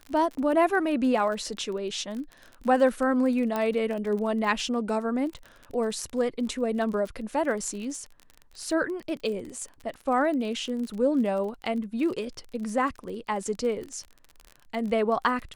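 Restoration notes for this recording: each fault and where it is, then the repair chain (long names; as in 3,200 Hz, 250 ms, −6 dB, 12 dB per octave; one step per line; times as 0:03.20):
surface crackle 31 per second −34 dBFS
0:03.56: click −15 dBFS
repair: click removal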